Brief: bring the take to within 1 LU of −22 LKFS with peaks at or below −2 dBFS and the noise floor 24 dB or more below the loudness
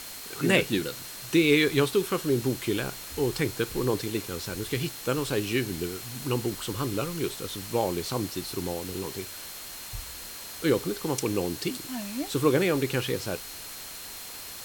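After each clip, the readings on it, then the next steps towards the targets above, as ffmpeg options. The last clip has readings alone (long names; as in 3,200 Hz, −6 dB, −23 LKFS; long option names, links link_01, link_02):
interfering tone 4,200 Hz; level of the tone −48 dBFS; background noise floor −41 dBFS; target noise floor −53 dBFS; integrated loudness −28.5 LKFS; sample peak −7.0 dBFS; target loudness −22.0 LKFS
→ -af "bandreject=frequency=4200:width=30"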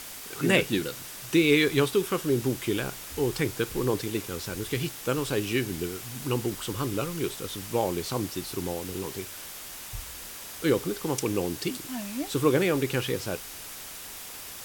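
interfering tone none found; background noise floor −41 dBFS; target noise floor −53 dBFS
→ -af "afftdn=noise_reduction=12:noise_floor=-41"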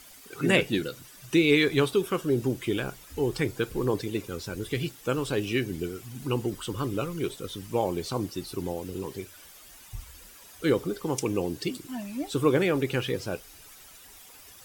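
background noise floor −50 dBFS; target noise floor −53 dBFS
→ -af "afftdn=noise_reduction=6:noise_floor=-50"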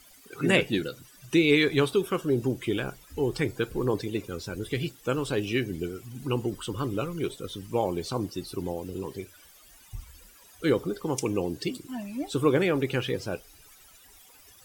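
background noise floor −55 dBFS; integrated loudness −28.5 LKFS; sample peak −7.0 dBFS; target loudness −22.0 LKFS
→ -af "volume=6.5dB,alimiter=limit=-2dB:level=0:latency=1"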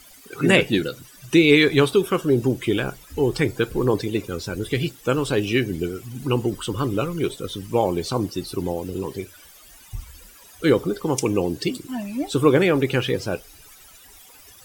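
integrated loudness −22.0 LKFS; sample peak −2.0 dBFS; background noise floor −48 dBFS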